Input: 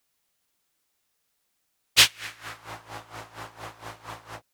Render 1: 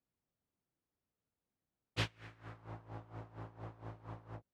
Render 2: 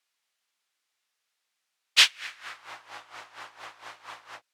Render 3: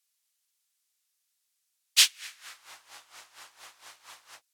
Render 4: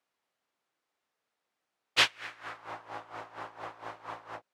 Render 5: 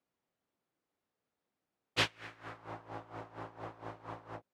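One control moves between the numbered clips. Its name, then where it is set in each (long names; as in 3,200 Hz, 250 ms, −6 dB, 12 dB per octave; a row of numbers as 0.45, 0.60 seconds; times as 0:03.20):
resonant band-pass, frequency: 110, 2,500, 7,900, 750, 290 Hertz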